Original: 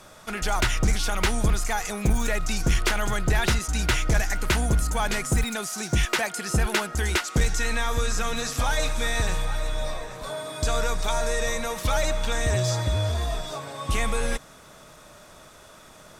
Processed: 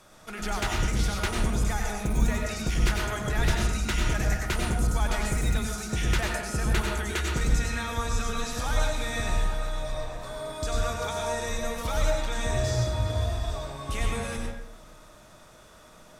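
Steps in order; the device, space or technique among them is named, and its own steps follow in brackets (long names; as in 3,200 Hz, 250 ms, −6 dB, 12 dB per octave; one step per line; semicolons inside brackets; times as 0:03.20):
0:06.67–0:07.33: notch filter 5,100 Hz, Q 11
bathroom (convolution reverb RT60 0.85 s, pre-delay 89 ms, DRR 0 dB)
level −7 dB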